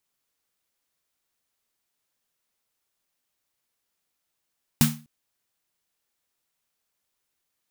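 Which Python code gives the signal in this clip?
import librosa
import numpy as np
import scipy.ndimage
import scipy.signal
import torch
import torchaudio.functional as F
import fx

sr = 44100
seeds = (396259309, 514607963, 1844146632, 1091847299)

y = fx.drum_snare(sr, seeds[0], length_s=0.25, hz=150.0, second_hz=230.0, noise_db=-3.5, noise_from_hz=720.0, decay_s=0.35, noise_decay_s=0.29)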